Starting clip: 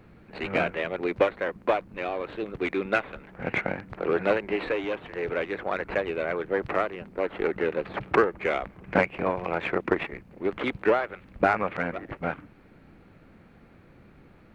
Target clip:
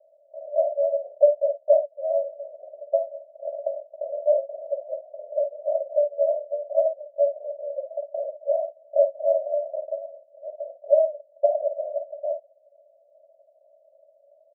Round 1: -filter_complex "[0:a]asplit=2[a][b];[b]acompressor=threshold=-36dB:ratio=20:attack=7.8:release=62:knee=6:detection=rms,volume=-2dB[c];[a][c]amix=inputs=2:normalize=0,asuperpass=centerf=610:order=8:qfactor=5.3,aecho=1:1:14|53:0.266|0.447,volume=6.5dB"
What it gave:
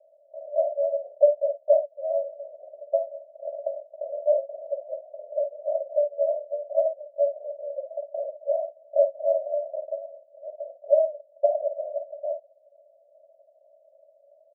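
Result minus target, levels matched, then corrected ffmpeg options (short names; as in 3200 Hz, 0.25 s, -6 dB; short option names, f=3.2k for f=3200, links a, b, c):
compressor: peak gain reduction +9.5 dB
-filter_complex "[0:a]asplit=2[a][b];[b]acompressor=threshold=-26dB:ratio=20:attack=7.8:release=62:knee=6:detection=rms,volume=-2dB[c];[a][c]amix=inputs=2:normalize=0,asuperpass=centerf=610:order=8:qfactor=5.3,aecho=1:1:14|53:0.266|0.447,volume=6.5dB"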